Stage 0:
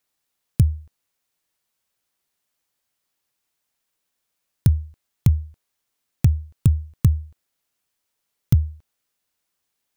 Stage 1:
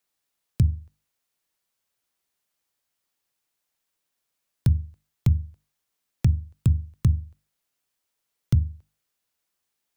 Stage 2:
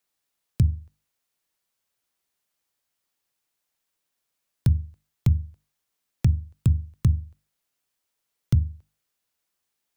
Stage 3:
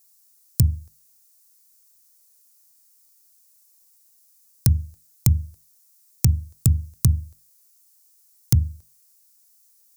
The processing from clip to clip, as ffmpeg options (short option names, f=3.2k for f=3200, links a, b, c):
-filter_complex "[0:a]bandreject=f=50:t=h:w=6,bandreject=f=100:t=h:w=6,bandreject=f=150:t=h:w=6,bandreject=f=200:t=h:w=6,bandreject=f=250:t=h:w=6,bandreject=f=300:t=h:w=6,acrossover=split=200|790|7100[a][b][c][d];[d]alimiter=level_in=2.5dB:limit=-24dB:level=0:latency=1:release=332,volume=-2.5dB[e];[a][b][c][e]amix=inputs=4:normalize=0,volume=-2.5dB"
-af anull
-af "aexciter=amount=10.3:drive=1.4:freq=4.6k,volume=2dB"